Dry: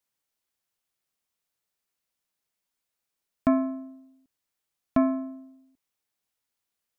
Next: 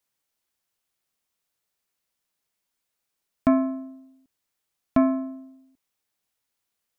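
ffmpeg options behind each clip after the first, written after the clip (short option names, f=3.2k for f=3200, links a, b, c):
-af "acontrast=38,volume=-2.5dB"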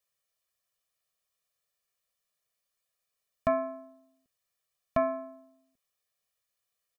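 -af "lowshelf=f=220:g=-4,aecho=1:1:1.7:0.99,volume=-6dB"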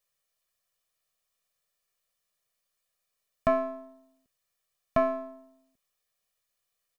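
-af "aeval=exprs='if(lt(val(0),0),0.708*val(0),val(0))':c=same,volume=3.5dB"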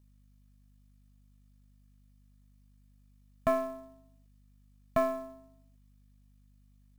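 -af "aeval=exprs='val(0)+0.00126*(sin(2*PI*50*n/s)+sin(2*PI*2*50*n/s)/2+sin(2*PI*3*50*n/s)/3+sin(2*PI*4*50*n/s)/4+sin(2*PI*5*50*n/s)/5)':c=same,acrusher=bits=6:mode=log:mix=0:aa=0.000001,volume=-3dB"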